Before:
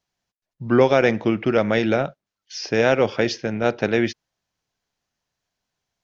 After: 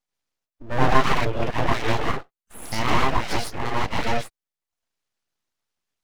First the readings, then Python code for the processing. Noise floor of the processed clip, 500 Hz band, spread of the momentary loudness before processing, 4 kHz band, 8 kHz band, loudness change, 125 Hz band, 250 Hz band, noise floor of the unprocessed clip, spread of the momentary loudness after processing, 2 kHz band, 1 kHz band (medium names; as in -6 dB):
under -85 dBFS, -9.0 dB, 11 LU, +1.0 dB, no reading, -4.0 dB, +0.5 dB, -7.5 dB, under -85 dBFS, 11 LU, -2.0 dB, +4.0 dB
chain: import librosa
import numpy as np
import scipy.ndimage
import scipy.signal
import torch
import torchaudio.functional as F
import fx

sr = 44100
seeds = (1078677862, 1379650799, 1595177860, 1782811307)

y = fx.rev_gated(x, sr, seeds[0], gate_ms=180, shape='rising', drr_db=-5.5)
y = fx.dereverb_blind(y, sr, rt60_s=0.63)
y = np.abs(y)
y = y * librosa.db_to_amplitude(-5.5)